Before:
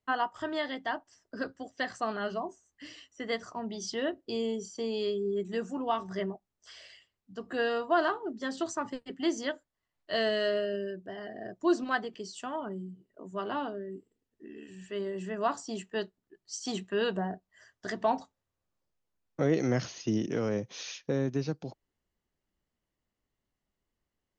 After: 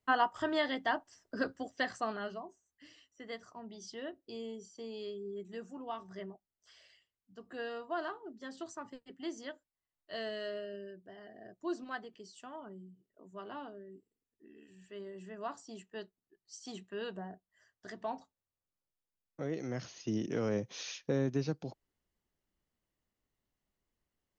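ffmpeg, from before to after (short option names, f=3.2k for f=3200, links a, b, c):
-af "volume=10dB,afade=t=out:st=1.6:d=0.85:silence=0.251189,afade=t=in:st=19.7:d=0.86:silence=0.354813"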